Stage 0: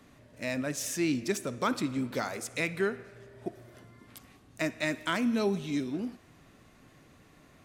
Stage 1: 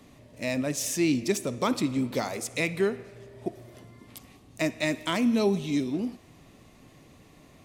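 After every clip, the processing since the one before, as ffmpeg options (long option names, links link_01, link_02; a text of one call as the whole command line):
ffmpeg -i in.wav -af "equalizer=frequency=1500:width_type=o:width=0.51:gain=-9.5,volume=4.5dB" out.wav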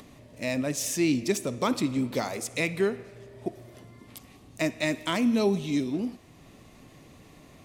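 ffmpeg -i in.wav -af "acompressor=mode=upward:threshold=-46dB:ratio=2.5" out.wav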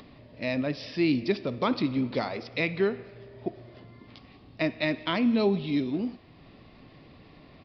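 ffmpeg -i in.wav -af "aresample=11025,aresample=44100" out.wav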